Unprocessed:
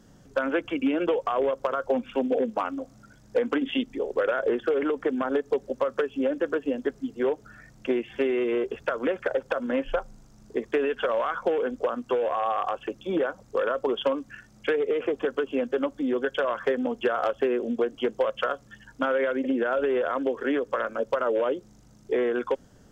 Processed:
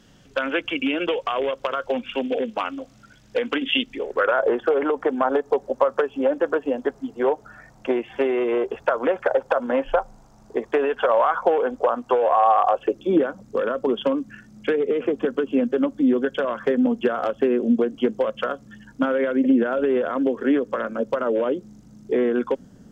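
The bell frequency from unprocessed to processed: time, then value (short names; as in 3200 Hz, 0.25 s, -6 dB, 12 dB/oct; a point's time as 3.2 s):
bell +12 dB 1.3 oct
3.92 s 2900 Hz
4.39 s 830 Hz
12.6 s 830 Hz
13.26 s 210 Hz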